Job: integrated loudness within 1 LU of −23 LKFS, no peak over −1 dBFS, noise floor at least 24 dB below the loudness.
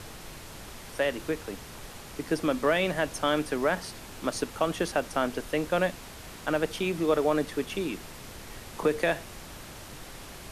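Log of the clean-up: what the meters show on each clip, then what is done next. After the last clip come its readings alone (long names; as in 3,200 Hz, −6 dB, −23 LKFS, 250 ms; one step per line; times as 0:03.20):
background noise floor −45 dBFS; target noise floor −53 dBFS; integrated loudness −29.0 LKFS; sample peak −13.0 dBFS; target loudness −23.0 LKFS
→ noise reduction from a noise print 8 dB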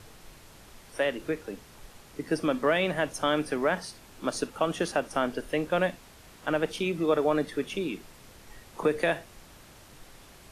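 background noise floor −52 dBFS; target noise floor −53 dBFS
→ noise reduction from a noise print 6 dB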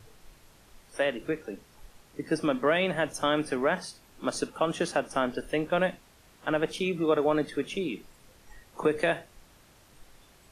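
background noise floor −58 dBFS; integrated loudness −29.0 LKFS; sample peak −13.0 dBFS; target loudness −23.0 LKFS
→ level +6 dB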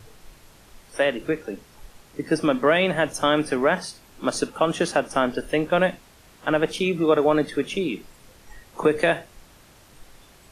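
integrated loudness −23.0 LKFS; sample peak −7.0 dBFS; background noise floor −52 dBFS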